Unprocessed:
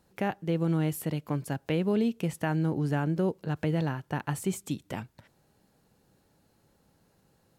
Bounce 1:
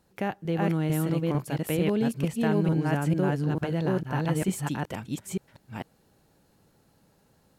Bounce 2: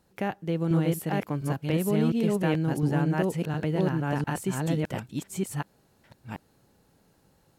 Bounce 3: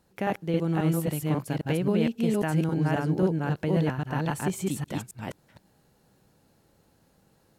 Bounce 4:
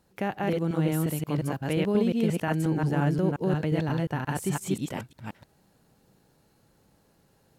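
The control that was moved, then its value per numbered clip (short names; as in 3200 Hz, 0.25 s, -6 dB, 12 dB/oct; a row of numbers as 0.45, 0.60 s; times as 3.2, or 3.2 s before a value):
reverse delay, time: 0.448, 0.707, 0.269, 0.177 s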